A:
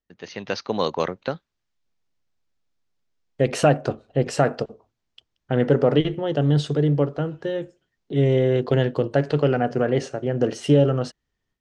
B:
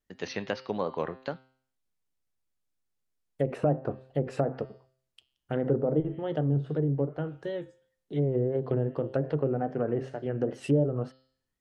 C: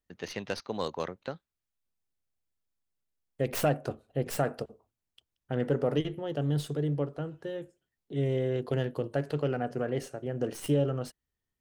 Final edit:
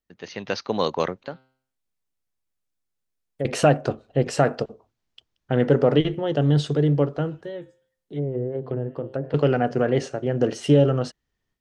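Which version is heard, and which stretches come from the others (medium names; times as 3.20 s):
A
1.24–3.45 s: from B
7.41–9.34 s: from B
not used: C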